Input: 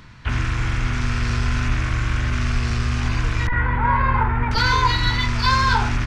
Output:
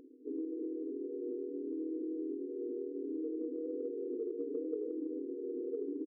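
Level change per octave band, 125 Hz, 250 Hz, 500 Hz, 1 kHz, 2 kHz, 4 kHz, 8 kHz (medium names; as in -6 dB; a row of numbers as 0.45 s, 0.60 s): under -40 dB, -8.0 dB, -1.5 dB, under -40 dB, under -40 dB, under -40 dB, under -40 dB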